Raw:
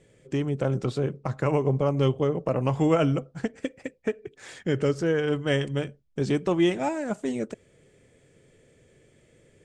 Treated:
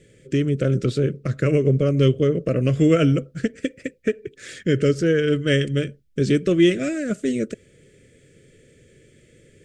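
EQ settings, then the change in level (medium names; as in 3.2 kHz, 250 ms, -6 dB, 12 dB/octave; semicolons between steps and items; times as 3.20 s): Butterworth band-stop 880 Hz, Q 0.95; +6.5 dB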